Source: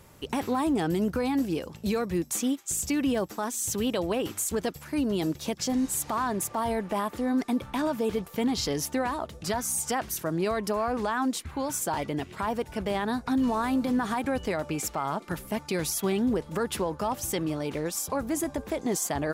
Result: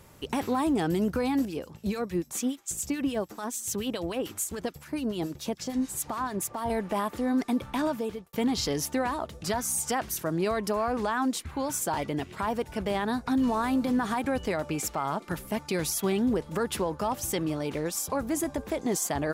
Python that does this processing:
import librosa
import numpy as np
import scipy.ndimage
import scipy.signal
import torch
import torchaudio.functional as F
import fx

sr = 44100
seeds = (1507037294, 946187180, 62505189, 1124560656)

y = fx.harmonic_tremolo(x, sr, hz=6.9, depth_pct=70, crossover_hz=1400.0, at=(1.45, 6.7))
y = fx.edit(y, sr, fx.fade_out_span(start_s=7.87, length_s=0.46), tone=tone)